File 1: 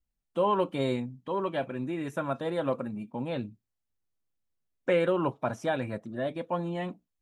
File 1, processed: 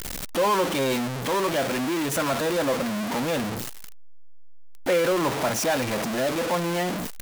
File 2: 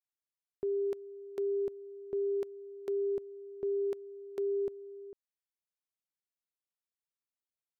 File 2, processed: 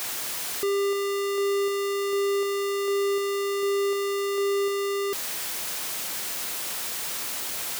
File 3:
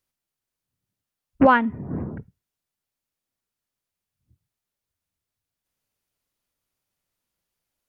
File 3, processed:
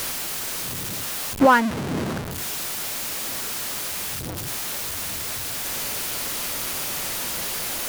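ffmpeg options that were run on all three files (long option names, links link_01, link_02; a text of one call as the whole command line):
ffmpeg -i in.wav -af "aeval=exprs='val(0)+0.5*0.0944*sgn(val(0))':channel_layout=same,lowshelf=frequency=160:gain=-10" out.wav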